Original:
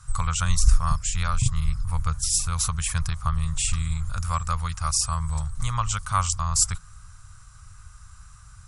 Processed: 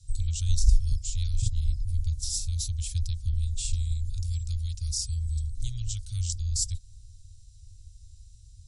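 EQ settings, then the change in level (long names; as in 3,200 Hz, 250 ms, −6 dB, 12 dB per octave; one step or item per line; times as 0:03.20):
elliptic band-stop filter 100–3,800 Hz, stop band 60 dB
high-frequency loss of the air 61 metres
−1.5 dB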